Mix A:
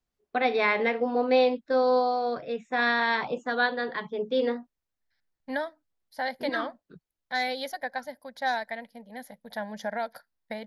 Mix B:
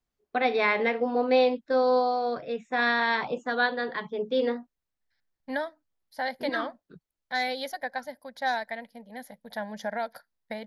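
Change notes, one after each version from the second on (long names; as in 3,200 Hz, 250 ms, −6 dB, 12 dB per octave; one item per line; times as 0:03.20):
nothing changed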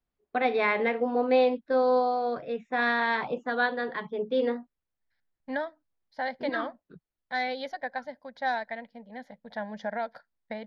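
master: add high-frequency loss of the air 180 metres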